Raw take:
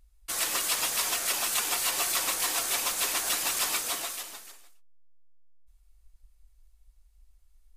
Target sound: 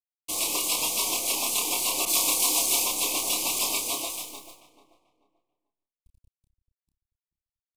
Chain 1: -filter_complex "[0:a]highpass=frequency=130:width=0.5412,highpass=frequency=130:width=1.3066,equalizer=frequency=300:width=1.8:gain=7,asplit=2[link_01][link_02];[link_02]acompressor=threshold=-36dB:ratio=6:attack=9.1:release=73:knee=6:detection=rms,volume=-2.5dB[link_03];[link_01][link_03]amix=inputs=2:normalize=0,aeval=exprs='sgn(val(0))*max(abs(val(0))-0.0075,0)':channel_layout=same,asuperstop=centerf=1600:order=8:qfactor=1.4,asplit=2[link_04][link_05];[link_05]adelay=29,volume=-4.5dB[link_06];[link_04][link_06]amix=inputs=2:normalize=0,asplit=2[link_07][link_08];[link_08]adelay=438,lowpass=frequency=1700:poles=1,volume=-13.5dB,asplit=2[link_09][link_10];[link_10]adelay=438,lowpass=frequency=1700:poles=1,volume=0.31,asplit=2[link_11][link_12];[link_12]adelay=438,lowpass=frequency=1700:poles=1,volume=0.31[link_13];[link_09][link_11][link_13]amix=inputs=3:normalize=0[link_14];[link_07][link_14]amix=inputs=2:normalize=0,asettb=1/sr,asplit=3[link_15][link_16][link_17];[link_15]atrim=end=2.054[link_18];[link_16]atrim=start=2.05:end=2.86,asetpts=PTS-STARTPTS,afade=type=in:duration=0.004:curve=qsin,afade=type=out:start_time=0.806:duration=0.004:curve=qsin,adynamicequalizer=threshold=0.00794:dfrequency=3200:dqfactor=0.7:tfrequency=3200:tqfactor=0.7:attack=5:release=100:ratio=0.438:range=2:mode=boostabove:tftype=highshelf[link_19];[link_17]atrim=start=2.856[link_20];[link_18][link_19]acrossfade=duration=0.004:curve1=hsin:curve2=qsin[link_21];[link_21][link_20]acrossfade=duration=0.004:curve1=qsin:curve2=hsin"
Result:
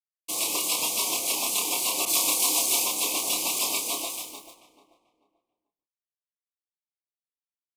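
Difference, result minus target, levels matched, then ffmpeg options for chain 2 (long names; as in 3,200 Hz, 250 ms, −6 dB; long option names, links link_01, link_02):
125 Hz band −2.5 dB
-filter_complex "[0:a]equalizer=frequency=300:width=1.8:gain=7,asplit=2[link_01][link_02];[link_02]acompressor=threshold=-36dB:ratio=6:attack=9.1:release=73:knee=6:detection=rms,volume=-2.5dB[link_03];[link_01][link_03]amix=inputs=2:normalize=0,aeval=exprs='sgn(val(0))*max(abs(val(0))-0.0075,0)':channel_layout=same,asuperstop=centerf=1600:order=8:qfactor=1.4,asplit=2[link_04][link_05];[link_05]adelay=29,volume=-4.5dB[link_06];[link_04][link_06]amix=inputs=2:normalize=0,asplit=2[link_07][link_08];[link_08]adelay=438,lowpass=frequency=1700:poles=1,volume=-13.5dB,asplit=2[link_09][link_10];[link_10]adelay=438,lowpass=frequency=1700:poles=1,volume=0.31,asplit=2[link_11][link_12];[link_12]adelay=438,lowpass=frequency=1700:poles=1,volume=0.31[link_13];[link_09][link_11][link_13]amix=inputs=3:normalize=0[link_14];[link_07][link_14]amix=inputs=2:normalize=0,asettb=1/sr,asplit=3[link_15][link_16][link_17];[link_15]atrim=end=2.054[link_18];[link_16]atrim=start=2.05:end=2.86,asetpts=PTS-STARTPTS,afade=type=in:duration=0.004:curve=qsin,afade=type=out:start_time=0.806:duration=0.004:curve=qsin,adynamicequalizer=threshold=0.00794:dfrequency=3200:dqfactor=0.7:tfrequency=3200:tqfactor=0.7:attack=5:release=100:ratio=0.438:range=2:mode=boostabove:tftype=highshelf[link_19];[link_17]atrim=start=2.856[link_20];[link_18][link_19]acrossfade=duration=0.004:curve1=hsin:curve2=qsin[link_21];[link_21][link_20]acrossfade=duration=0.004:curve1=qsin:curve2=hsin"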